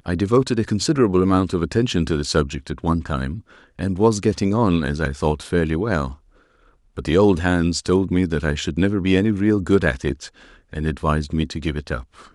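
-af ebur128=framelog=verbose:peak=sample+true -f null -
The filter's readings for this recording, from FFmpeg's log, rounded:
Integrated loudness:
  I:         -20.5 LUFS
  Threshold: -31.0 LUFS
Loudness range:
  LRA:         2.3 LU
  Threshold: -40.9 LUFS
  LRA low:   -21.8 LUFS
  LRA high:  -19.5 LUFS
Sample peak:
  Peak:       -2.9 dBFS
True peak:
  Peak:       -2.9 dBFS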